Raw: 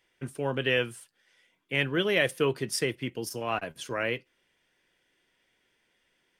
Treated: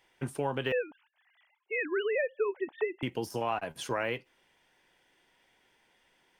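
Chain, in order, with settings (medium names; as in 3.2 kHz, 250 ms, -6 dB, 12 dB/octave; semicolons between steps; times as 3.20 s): 0.72–3.03 s: formants replaced by sine waves; de-esser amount 95%; peaking EQ 850 Hz +9 dB 0.58 oct; compression 4:1, threshold -31 dBFS, peak gain reduction 11.5 dB; trim +2.5 dB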